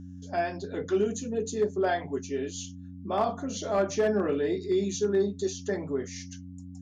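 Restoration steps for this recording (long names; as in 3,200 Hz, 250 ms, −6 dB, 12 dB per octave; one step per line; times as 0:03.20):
clipped peaks rebuilt −18 dBFS
hum removal 90.5 Hz, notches 3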